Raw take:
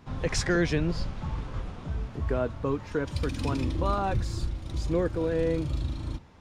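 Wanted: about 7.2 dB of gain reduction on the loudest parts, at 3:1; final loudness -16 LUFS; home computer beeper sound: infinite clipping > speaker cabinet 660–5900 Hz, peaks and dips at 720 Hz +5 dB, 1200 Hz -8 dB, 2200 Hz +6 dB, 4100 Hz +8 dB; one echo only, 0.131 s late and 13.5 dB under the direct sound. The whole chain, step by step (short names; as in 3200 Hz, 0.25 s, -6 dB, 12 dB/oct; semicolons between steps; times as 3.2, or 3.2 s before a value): compressor 3:1, threshold -31 dBFS; echo 0.131 s -13.5 dB; infinite clipping; speaker cabinet 660–5900 Hz, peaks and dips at 720 Hz +5 dB, 1200 Hz -8 dB, 2200 Hz +6 dB, 4100 Hz +8 dB; gain +21 dB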